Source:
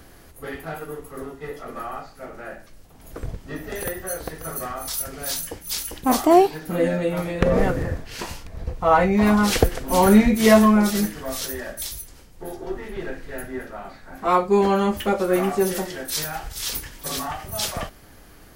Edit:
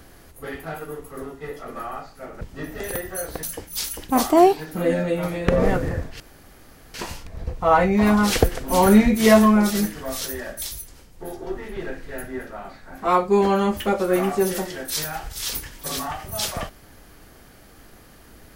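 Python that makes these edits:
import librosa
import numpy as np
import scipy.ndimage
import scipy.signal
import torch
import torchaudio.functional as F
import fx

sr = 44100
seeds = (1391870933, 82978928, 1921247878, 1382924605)

y = fx.edit(x, sr, fx.cut(start_s=2.41, length_s=0.92),
    fx.cut(start_s=4.35, length_s=1.02),
    fx.insert_room_tone(at_s=8.14, length_s=0.74), tone=tone)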